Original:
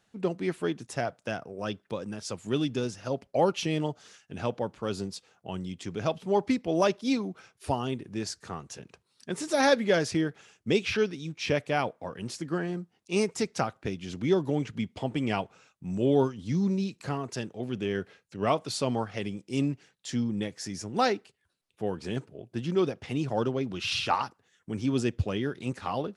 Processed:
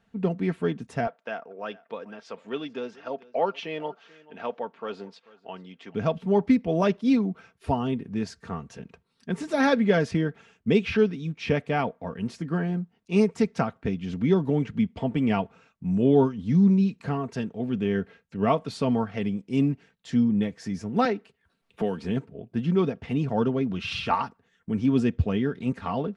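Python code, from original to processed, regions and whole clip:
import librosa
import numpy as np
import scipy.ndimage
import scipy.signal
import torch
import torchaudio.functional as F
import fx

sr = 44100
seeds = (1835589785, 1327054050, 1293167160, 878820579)

y = fx.chain(x, sr, fx.bandpass_edges(low_hz=500.0, high_hz=4000.0),
    fx.echo_single(ms=437, db=-21.5), at=(1.07, 5.95))
y = fx.chain(y, sr, fx.low_shelf(hz=120.0, db=-11.5),
    fx.band_squash(depth_pct=70), at=(21.05, 22.04))
y = fx.bass_treble(y, sr, bass_db=7, treble_db=-13)
y = y + 0.46 * np.pad(y, (int(4.4 * sr / 1000.0), 0))[:len(y)]
y = y * librosa.db_to_amplitude(1.0)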